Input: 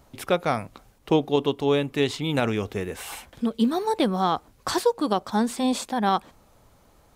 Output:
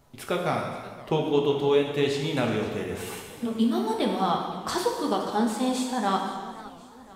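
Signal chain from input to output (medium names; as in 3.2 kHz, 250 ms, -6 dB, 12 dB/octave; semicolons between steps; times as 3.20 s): gated-style reverb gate 480 ms falling, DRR 1 dB; flange 0.94 Hz, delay 6.4 ms, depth 8.8 ms, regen -62%; modulated delay 520 ms, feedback 52%, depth 208 cents, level -18 dB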